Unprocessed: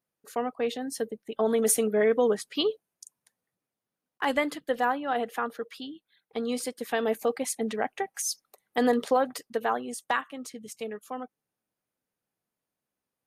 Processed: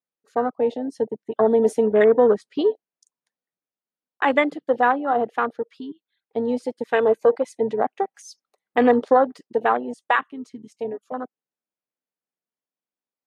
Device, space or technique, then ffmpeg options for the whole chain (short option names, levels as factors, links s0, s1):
over-cleaned archive recording: -filter_complex "[0:a]asettb=1/sr,asplit=3[s0][s1][s2];[s0]atrim=end=6.884[s3];[s1]atrim=start=6.88:end=7.78,asetpts=PTS-STARTPTS,afade=t=in:d=0.004:c=qsin,afade=t=out:st=0.896:d=0.004:c=qsin,aecho=1:1:2:0.42,atrim=end_sample=39690[s4];[s2]atrim=start=7.776[s5];[s3][s4]acrossfade=d=0.004:c1=hsin:c2=qsin[s6];[s6][s5]acrossfade=d=0.004:c1=qsin:c2=hsin,highpass=200,lowpass=6000,afwtdn=0.0251,volume=2.51"